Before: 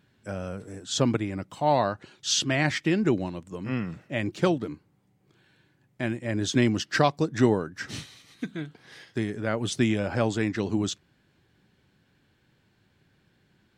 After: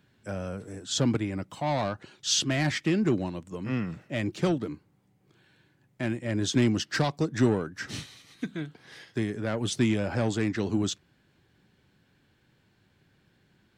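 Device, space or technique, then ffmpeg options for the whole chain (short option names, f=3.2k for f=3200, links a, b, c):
one-band saturation: -filter_complex "[0:a]acrossover=split=310|3600[a][b][c];[b]asoftclip=type=tanh:threshold=-26dB[d];[a][d][c]amix=inputs=3:normalize=0"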